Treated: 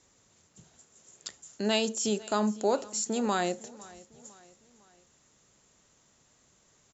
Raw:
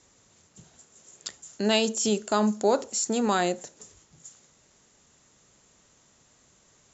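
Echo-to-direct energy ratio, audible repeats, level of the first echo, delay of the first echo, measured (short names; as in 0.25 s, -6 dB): -20.5 dB, 3, -21.5 dB, 0.504 s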